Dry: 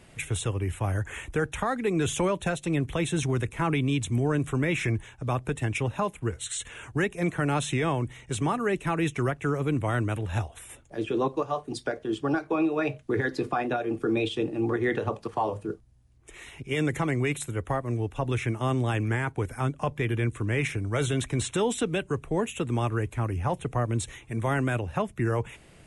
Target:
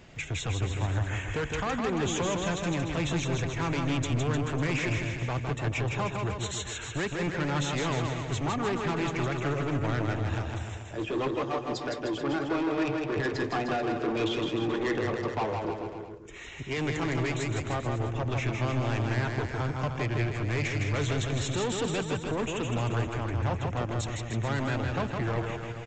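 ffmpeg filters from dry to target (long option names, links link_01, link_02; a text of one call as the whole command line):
ffmpeg -i in.wav -af "aresample=16000,asoftclip=type=tanh:threshold=-28.5dB,aresample=44100,aecho=1:1:160|304|433.6|550.2|655.2:0.631|0.398|0.251|0.158|0.1,volume=1.5dB" out.wav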